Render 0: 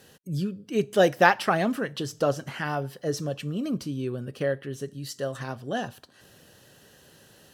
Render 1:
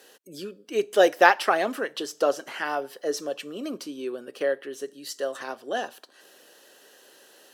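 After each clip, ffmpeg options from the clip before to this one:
ffmpeg -i in.wav -af "highpass=frequency=320:width=0.5412,highpass=frequency=320:width=1.3066,volume=2dB" out.wav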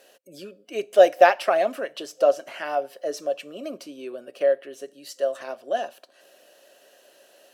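ffmpeg -i in.wav -af "superequalizer=8b=3.16:12b=1.58,volume=-4dB" out.wav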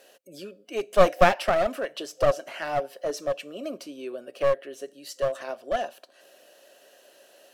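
ffmpeg -i in.wav -af "aeval=exprs='clip(val(0),-1,0.0631)':channel_layout=same" out.wav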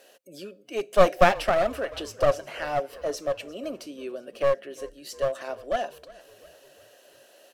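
ffmpeg -i in.wav -filter_complex "[0:a]asplit=5[link_01][link_02][link_03][link_04][link_05];[link_02]adelay=352,afreqshift=-37,volume=-21.5dB[link_06];[link_03]adelay=704,afreqshift=-74,volume=-26.5dB[link_07];[link_04]adelay=1056,afreqshift=-111,volume=-31.6dB[link_08];[link_05]adelay=1408,afreqshift=-148,volume=-36.6dB[link_09];[link_01][link_06][link_07][link_08][link_09]amix=inputs=5:normalize=0" out.wav

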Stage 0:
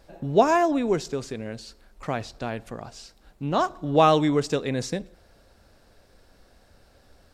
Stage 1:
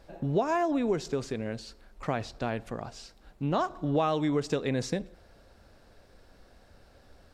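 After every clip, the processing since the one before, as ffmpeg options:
ffmpeg -i in.wav -af "highshelf=frequency=5200:gain=-6,acompressor=threshold=-24dB:ratio=5" out.wav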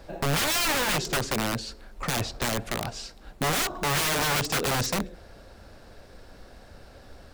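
ffmpeg -i in.wav -filter_complex "[0:a]acrusher=bits=9:mode=log:mix=0:aa=0.000001,acrossover=split=130[link_01][link_02];[link_02]aeval=exprs='(mod(28.2*val(0)+1,2)-1)/28.2':channel_layout=same[link_03];[link_01][link_03]amix=inputs=2:normalize=0,volume=8.5dB" out.wav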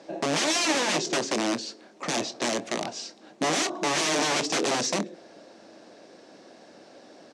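ffmpeg -i in.wav -filter_complex "[0:a]highpass=frequency=190:width=0.5412,highpass=frequency=190:width=1.3066,equalizer=frequency=320:width_type=q:width=4:gain=8,equalizer=frequency=640:width_type=q:width=4:gain=4,equalizer=frequency=1400:width_type=q:width=4:gain=-5,equalizer=frequency=6000:width_type=q:width=4:gain=5,lowpass=frequency=8200:width=0.5412,lowpass=frequency=8200:width=1.3066,asplit=2[link_01][link_02];[link_02]adelay=25,volume=-14dB[link_03];[link_01][link_03]amix=inputs=2:normalize=0" out.wav

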